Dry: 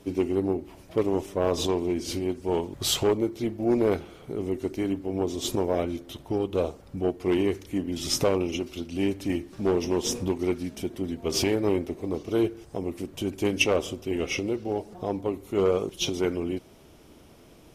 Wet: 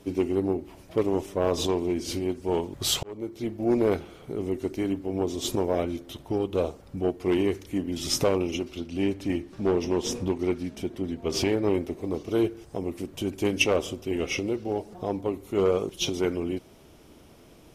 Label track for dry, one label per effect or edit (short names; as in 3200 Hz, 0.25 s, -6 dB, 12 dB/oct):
3.030000	3.790000	fade in equal-power
8.630000	11.740000	high shelf 7300 Hz -8.5 dB